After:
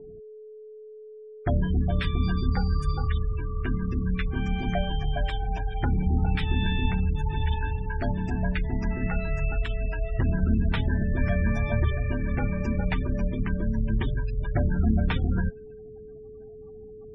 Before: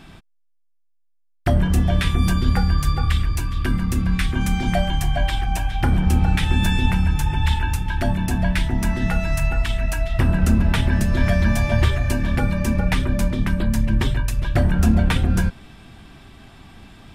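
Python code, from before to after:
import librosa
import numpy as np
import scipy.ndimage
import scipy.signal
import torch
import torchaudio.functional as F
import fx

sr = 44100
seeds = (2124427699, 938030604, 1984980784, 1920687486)

y = x + 10.0 ** (-35.0 / 20.0) * np.sin(2.0 * np.pi * 430.0 * np.arange(len(x)) / sr)
y = fx.env_lowpass(y, sr, base_hz=1300.0, full_db=-13.5)
y = fx.spec_gate(y, sr, threshold_db=-25, keep='strong')
y = y * 10.0 ** (-6.5 / 20.0)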